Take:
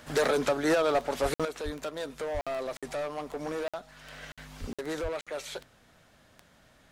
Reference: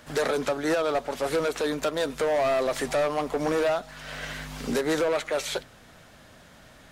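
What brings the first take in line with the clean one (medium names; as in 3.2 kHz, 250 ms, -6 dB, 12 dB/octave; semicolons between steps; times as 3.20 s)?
de-click; de-plosive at 1.22/1.64/2.33/4.60/5.02 s; interpolate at 1.34/2.41/2.77/3.68/4.32/4.73/5.21 s, 56 ms; trim 0 dB, from 1.45 s +9 dB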